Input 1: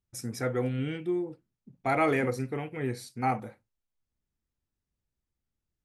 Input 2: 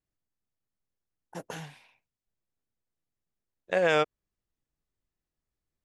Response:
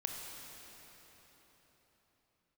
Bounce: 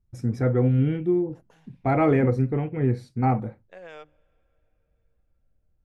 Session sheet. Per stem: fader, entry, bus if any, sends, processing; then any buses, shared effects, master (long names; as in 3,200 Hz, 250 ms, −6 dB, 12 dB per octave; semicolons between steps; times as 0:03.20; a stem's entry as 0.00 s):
+2.0 dB, 0.00 s, no send, spectral tilt −3.5 dB per octave
−19.5 dB, 0.00 s, send −22 dB, mains-hum notches 50/100/150/200/250/300 Hz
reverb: on, RT60 4.5 s, pre-delay 22 ms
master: high-shelf EQ 5,600 Hz −7 dB